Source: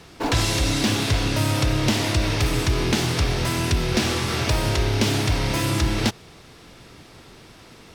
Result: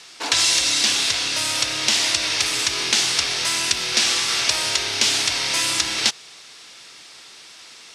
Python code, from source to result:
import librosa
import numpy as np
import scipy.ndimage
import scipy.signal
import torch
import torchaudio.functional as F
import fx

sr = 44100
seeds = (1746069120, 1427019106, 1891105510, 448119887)

y = fx.weighting(x, sr, curve='ITU-R 468')
y = fx.rider(y, sr, range_db=10, speed_s=2.0)
y = y * 10.0 ** (-2.0 / 20.0)